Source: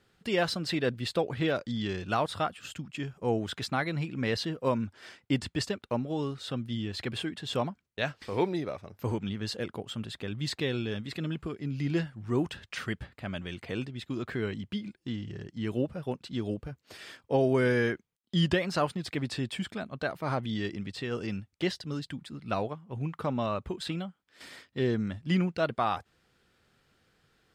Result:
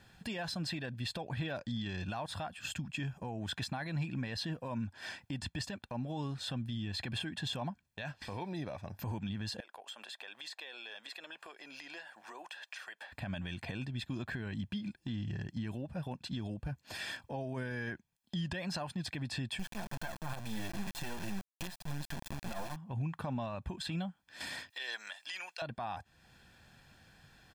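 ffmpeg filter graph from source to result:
-filter_complex "[0:a]asettb=1/sr,asplit=3[a][b][c];[a]atrim=end=9.604[d];[b]atrim=start=9.6:end=13.12,asetpts=PTS-STARTPTS,afade=t=in:d=0.004:c=qsin,afade=t=out:st=3.516:d=0.004:c=qsin,highpass=f=500:w=0.5412,highpass=f=500:w=1.3066,acompressor=threshold=-52dB:ratio=5:attack=3.2:release=140:knee=1:detection=peak[e];[c]atrim=start=13.116[f];[d][e]acrossfade=d=0.004:c1=hsin:c2=qsin[g];[g][f]acrossfade=d=0.004:c1=qsin:c2=hsin,asettb=1/sr,asplit=3[h][i][j];[h]atrim=end=19.594[k];[i]atrim=start=19.59:end=22.76,asetpts=PTS-STARTPTS,afade=t=in:d=0.004:c=qsin,afade=t=out:st=3.166:d=0.004:c=qsin,lowpass=4k,aecho=1:1:5.7:0.6,atrim=end_sample=139797,acrusher=bits=4:dc=4:mix=0:aa=0.000001[l];[j]atrim=start=22.756[m];[k][l]acrossfade=d=0.004:c1=hsin:c2=qsin[n];[n][m]acrossfade=d=0.004:c1=qsin:c2=hsin,asettb=1/sr,asplit=3[o][p][q];[o]atrim=end=24.704[r];[p]atrim=start=24.7:end=25.62,asetpts=PTS-STARTPTS,afade=t=in:d=0.004:c=qsin,afade=t=out:st=0.916:d=0.004:c=qsin,highpass=f=560:w=0.5412,highpass=f=560:w=1.3066,tiltshelf=f=1.3k:g=-8.5[s];[q]atrim=start=25.616[t];[r][s]acrossfade=d=0.004:c1=hsin:c2=qsin[u];[u][t]acrossfade=d=0.004:c1=qsin:c2=hsin,acompressor=threshold=-47dB:ratio=2,alimiter=level_in=12.5dB:limit=-24dB:level=0:latency=1:release=54,volume=-12.5dB,aecho=1:1:1.2:0.6,volume=6dB"

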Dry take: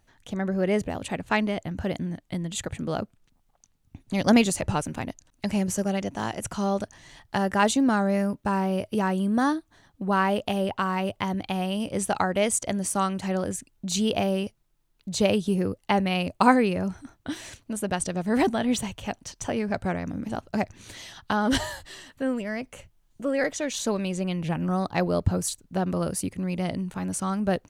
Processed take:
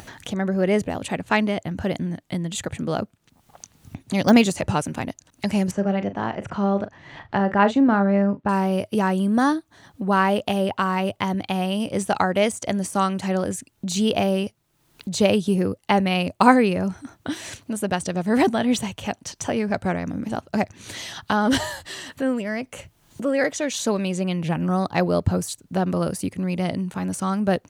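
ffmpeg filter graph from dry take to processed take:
-filter_complex "[0:a]asettb=1/sr,asplit=3[a][b][c];[a]atrim=end=5.714[d];[b]atrim=start=5.71:end=8.49,asetpts=PTS-STARTPTS,afade=t=in:d=0.004:c=qsin,afade=t=out:st=2.776:d=0.004:c=qsin,lowpass=2.2k,asplit=2[e][f];[f]adelay=40,volume=-12dB[g];[e][g]amix=inputs=2:normalize=0,atrim=end_sample=122598[h];[c]atrim=start=8.486[i];[d][h]acrossfade=d=0.004:c1=hsin:c2=qsin[j];[j][i]acrossfade=d=0.004:c1=qsin:c2=hsin,deesser=0.55,highpass=84,acompressor=mode=upward:threshold=-31dB:ratio=2.5,volume=4dB"

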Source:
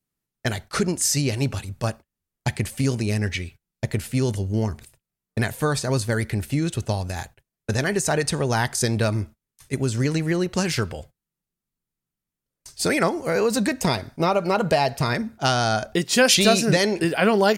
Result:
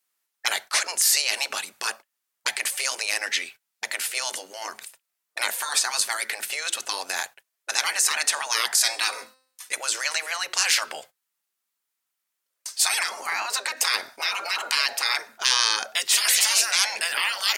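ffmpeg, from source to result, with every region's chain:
-filter_complex "[0:a]asettb=1/sr,asplit=3[a][b][c];[a]atrim=end=8.774[d];[b]atrim=start=8.77:end=9.75,asetpts=PTS-STARTPTS,afade=t=in:d=0.004:c=qsin,afade=t=out:st=0.976:d=0.004:c=qsin,aecho=1:1:4.1:0.65,atrim=end_sample=43218,bandreject=f=259.4:t=h:w=4,bandreject=f=518.8:t=h:w=4,bandreject=f=778.2:t=h:w=4,bandreject=f=1.0376k:t=h:w=4,bandreject=f=1.297k:t=h:w=4,bandreject=f=1.5564k:t=h:w=4,bandreject=f=1.8158k:t=h:w=4,bandreject=f=2.0752k:t=h:w=4,bandreject=f=2.3346k:t=h:w=4,bandreject=f=2.594k:t=h:w=4,bandreject=f=2.8534k:t=h:w=4,bandreject=f=3.1128k:t=h:w=4,bandreject=f=3.3722k:t=h:w=4,bandreject=f=3.6316k:t=h:w=4,bandreject=f=3.891k:t=h:w=4,bandreject=f=4.1504k:t=h:w=4,bandreject=f=4.4098k:t=h:w=4,bandreject=f=4.6692k:t=h:w=4,bandreject=f=4.9286k:t=h:w=4,bandreject=f=5.188k:t=h:w=4,bandreject=f=5.4474k:t=h:w=4,bandreject=f=5.7068k:t=h:w=4,bandreject=f=5.9662k:t=h:w=4,bandreject=f=6.2256k:t=h:w=4,bandreject=f=6.485k:t=h:w=4,bandreject=f=6.7444k:t=h:w=4,bandreject=f=7.0038k:t=h:w=4,bandreject=f=7.2632k:t=h:w=4,bandreject=f=7.5226k:t=h:w=4,bandreject=f=7.782k:t=h:w=4,bandreject=f=8.0414k:t=h:w=4,bandreject=f=8.3008k:t=h:w=4,bandreject=f=8.5602k:t=h:w=4,bandreject=f=8.8196k:t=h:w=4[e];[c]atrim=start=9.746[f];[d][e]acrossfade=d=0.004:c1=hsin:c2=qsin[g];[g][f]acrossfade=d=0.004:c1=qsin:c2=hsin,asettb=1/sr,asplit=3[h][i][j];[h]atrim=end=13.264[k];[i]atrim=start=13.26:end=13.77,asetpts=PTS-STARTPTS,afade=t=in:d=0.004:c=qsin,afade=t=out:st=0.506:d=0.004:c=qsin,highpass=280,highshelf=f=3.9k:g=-9.5[l];[j]atrim=start=13.766[m];[k][l]acrossfade=d=0.004:c1=hsin:c2=qsin[n];[n][m]acrossfade=d=0.004:c1=qsin:c2=hsin,afftfilt=real='re*lt(hypot(re,im),0.126)':imag='im*lt(hypot(re,im),0.126)':win_size=1024:overlap=0.75,highpass=900,volume=9dB"

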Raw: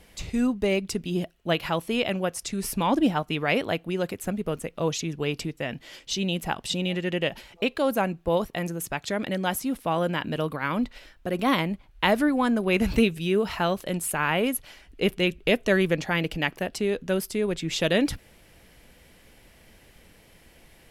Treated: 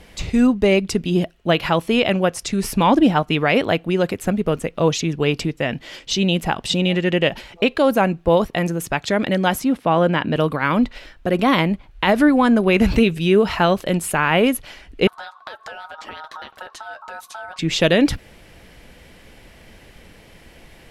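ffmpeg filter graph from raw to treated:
-filter_complex "[0:a]asettb=1/sr,asplit=3[a][b][c];[a]atrim=end=9.644[d];[b]atrim=start=9.64:end=10.36,asetpts=PTS-STARTPTS,afade=t=in:d=0.004:c=qsin,afade=t=out:st=0.716:d=0.004:c=qsin,highpass=79,aemphasis=mode=reproduction:type=cd[e];[c]atrim=start=10.356[f];[d][e]acrossfade=d=0.004:c1=hsin:c2=qsin[g];[g][f]acrossfade=d=0.004:c1=qsin:c2=hsin,asettb=1/sr,asplit=3[h][i][j];[h]atrim=end=15.074[k];[i]atrim=start=15.07:end=17.59,asetpts=PTS-STARTPTS,afade=t=in:d=0.004:c=qsin,afade=t=out:st=2.516:d=0.004:c=qsin,acompressor=threshold=-32dB:ratio=16:attack=3.2:release=140:knee=1:detection=peak,flanger=delay=4.8:depth=5.2:regen=-44:speed=1.9:shape=triangular,aeval=exprs='val(0)*sin(2*PI*1100*n/s)':c=same[l];[j]atrim=start=17.586[m];[k][l]acrossfade=d=0.004:c1=hsin:c2=qsin[n];[n][m]acrossfade=d=0.004:c1=qsin:c2=hsin,highshelf=f=8.5k:g=-11,alimiter=level_in=13.5dB:limit=-1dB:release=50:level=0:latency=1,volume=-4.5dB"

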